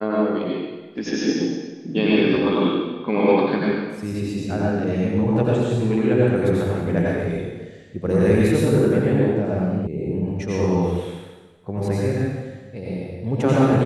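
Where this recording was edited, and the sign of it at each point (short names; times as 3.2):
9.87 sound cut off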